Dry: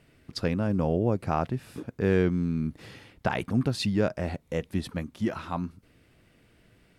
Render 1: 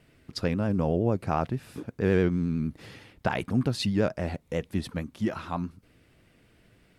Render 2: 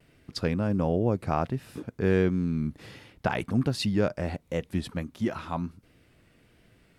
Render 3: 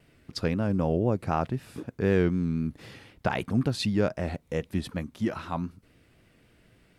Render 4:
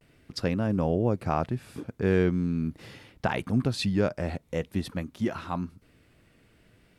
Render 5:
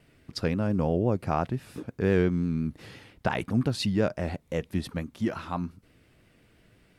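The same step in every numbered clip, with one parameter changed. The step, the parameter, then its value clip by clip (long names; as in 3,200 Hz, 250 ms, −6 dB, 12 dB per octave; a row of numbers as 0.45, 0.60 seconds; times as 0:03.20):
pitch vibrato, speed: 11, 1.4, 3.9, 0.44, 5.8 Hertz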